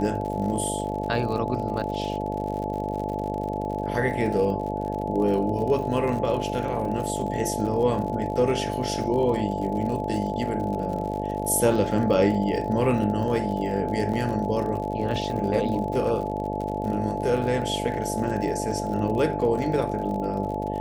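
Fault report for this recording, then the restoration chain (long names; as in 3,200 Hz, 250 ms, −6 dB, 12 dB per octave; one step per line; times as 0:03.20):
mains buzz 50 Hz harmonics 14 −30 dBFS
surface crackle 56 per second −32 dBFS
whistle 860 Hz −31 dBFS
0:14.13–0:14.14: drop-out 5.9 ms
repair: click removal
notch filter 860 Hz, Q 30
hum removal 50 Hz, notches 14
repair the gap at 0:14.13, 5.9 ms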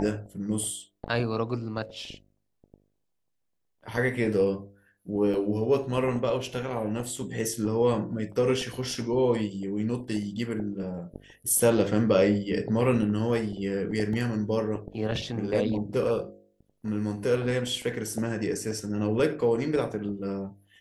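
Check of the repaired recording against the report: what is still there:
none of them is left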